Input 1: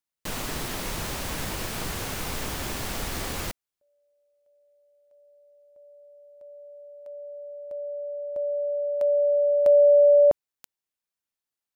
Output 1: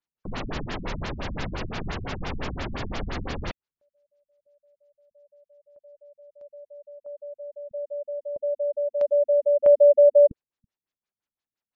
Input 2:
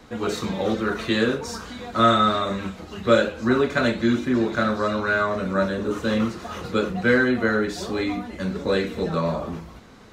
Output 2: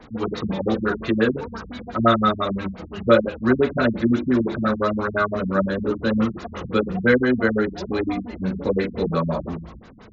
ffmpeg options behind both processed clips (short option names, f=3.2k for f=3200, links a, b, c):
-filter_complex "[0:a]acrossover=split=4700[a][b];[b]acompressor=threshold=-46dB:ratio=4:attack=1:release=60[c];[a][c]amix=inputs=2:normalize=0,afftfilt=real='re*lt(b*sr/1024,220*pow(7600/220,0.5+0.5*sin(2*PI*5.8*pts/sr)))':imag='im*lt(b*sr/1024,220*pow(7600/220,0.5+0.5*sin(2*PI*5.8*pts/sr)))':win_size=1024:overlap=0.75,volume=2.5dB"